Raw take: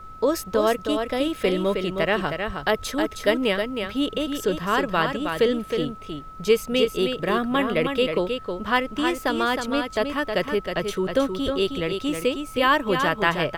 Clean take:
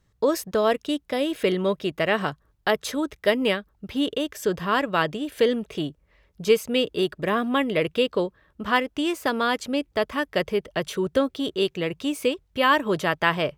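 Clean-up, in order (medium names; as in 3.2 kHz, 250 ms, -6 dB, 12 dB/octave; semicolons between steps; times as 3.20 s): band-stop 1.3 kHz, Q 30; de-plosive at 2.46/11.44 s; noise print and reduce 26 dB; inverse comb 315 ms -6 dB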